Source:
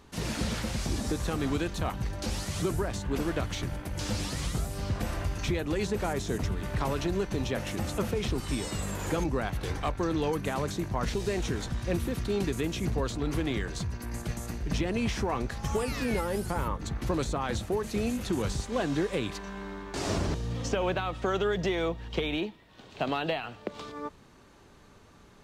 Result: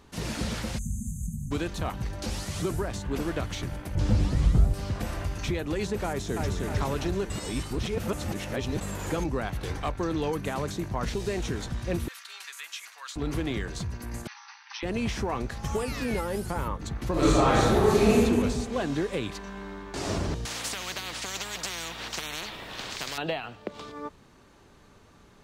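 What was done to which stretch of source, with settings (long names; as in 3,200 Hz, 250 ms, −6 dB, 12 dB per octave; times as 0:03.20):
0:00.78–0:01.51: time-frequency box erased 250–6,100 Hz
0:03.95–0:04.74: spectral tilt −3 dB per octave
0:06.05–0:06.52: delay throw 310 ms, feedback 55%, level −3 dB
0:07.30–0:08.81: reverse
0:12.08–0:13.16: high-pass filter 1,200 Hz 24 dB per octave
0:14.27–0:14.83: linear-phase brick-wall band-pass 780–6,200 Hz
0:17.12–0:18.20: thrown reverb, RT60 1.7 s, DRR −10 dB
0:20.45–0:23.18: every bin compressed towards the loudest bin 10 to 1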